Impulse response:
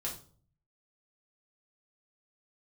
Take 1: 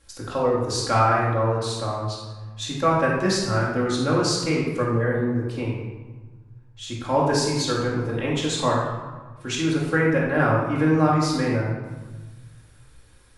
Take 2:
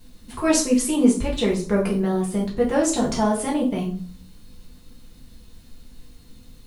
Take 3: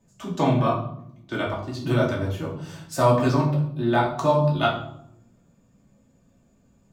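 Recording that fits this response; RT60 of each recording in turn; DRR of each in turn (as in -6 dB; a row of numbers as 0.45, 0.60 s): 2; 1.4, 0.45, 0.75 s; -5.5, -4.0, -4.5 dB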